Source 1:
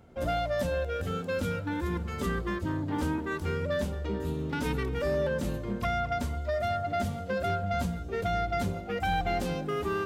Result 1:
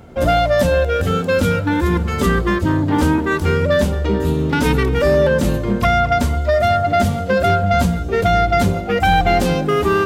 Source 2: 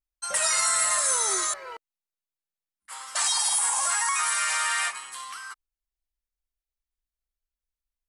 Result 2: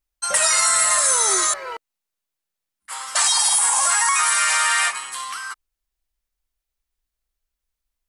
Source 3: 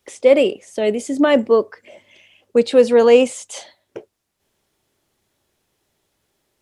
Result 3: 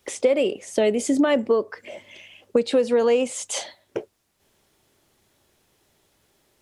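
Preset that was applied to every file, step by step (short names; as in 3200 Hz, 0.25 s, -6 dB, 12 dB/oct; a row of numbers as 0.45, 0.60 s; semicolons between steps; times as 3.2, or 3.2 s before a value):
compressor 10:1, threshold -21 dBFS; normalise peaks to -6 dBFS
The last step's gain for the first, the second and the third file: +14.5, +8.0, +5.0 dB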